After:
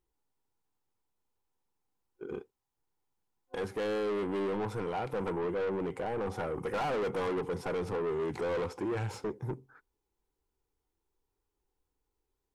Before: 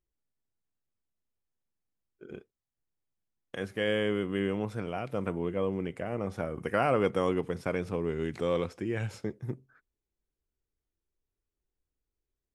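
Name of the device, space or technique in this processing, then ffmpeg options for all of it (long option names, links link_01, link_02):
saturation between pre-emphasis and de-emphasis: -af "superequalizer=6b=1.58:7b=2:9b=3.55:10b=1.58,highshelf=frequency=3500:gain=10.5,asoftclip=type=tanh:threshold=-32dB,highshelf=frequency=3500:gain=-10.5,volume=2.5dB"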